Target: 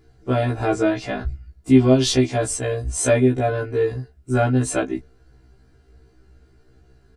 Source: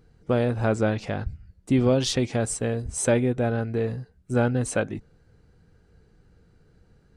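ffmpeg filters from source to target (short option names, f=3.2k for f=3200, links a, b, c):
-af "aecho=1:1:2.9:0.6,afftfilt=real='re*1.73*eq(mod(b,3),0)':imag='im*1.73*eq(mod(b,3),0)':win_size=2048:overlap=0.75,volume=6dB"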